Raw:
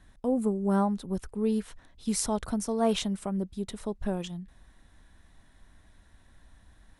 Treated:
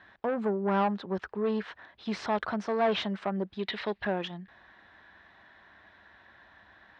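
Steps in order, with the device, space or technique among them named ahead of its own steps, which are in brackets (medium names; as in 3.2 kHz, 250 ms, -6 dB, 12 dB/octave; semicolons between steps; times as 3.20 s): 3.59–4.05 s: high-order bell 3 kHz +11.5 dB; overdrive pedal into a guitar cabinet (overdrive pedal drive 24 dB, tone 1.5 kHz, clips at -9.5 dBFS; cabinet simulation 87–4500 Hz, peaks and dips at 150 Hz -9 dB, 260 Hz -8 dB, 490 Hz -4 dB, 1.7 kHz +5 dB); trim -5.5 dB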